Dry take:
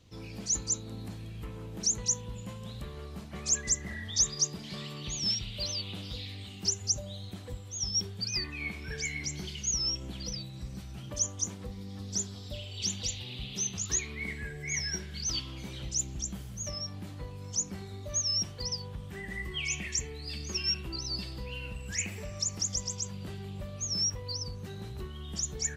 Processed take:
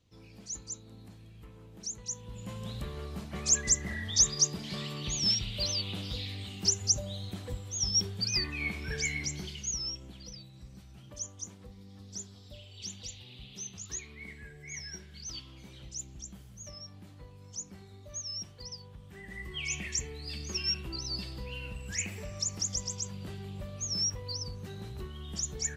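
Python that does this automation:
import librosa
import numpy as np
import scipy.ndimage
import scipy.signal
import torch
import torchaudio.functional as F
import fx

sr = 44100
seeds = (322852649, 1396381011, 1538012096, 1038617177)

y = fx.gain(x, sr, db=fx.line((2.04, -10.0), (2.59, 2.5), (9.09, 2.5), (10.21, -9.0), (19.0, -9.0), (19.76, -1.0)))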